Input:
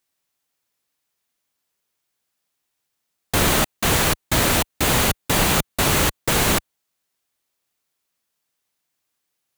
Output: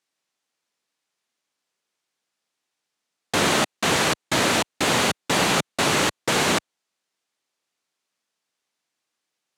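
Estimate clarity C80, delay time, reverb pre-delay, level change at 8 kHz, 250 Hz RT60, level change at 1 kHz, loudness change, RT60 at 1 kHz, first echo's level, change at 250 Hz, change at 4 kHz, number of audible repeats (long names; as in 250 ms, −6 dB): no reverb audible, no echo audible, no reverb audible, −3.5 dB, no reverb audible, 0.0 dB, −2.0 dB, no reverb audible, no echo audible, −1.5 dB, 0.0 dB, no echo audible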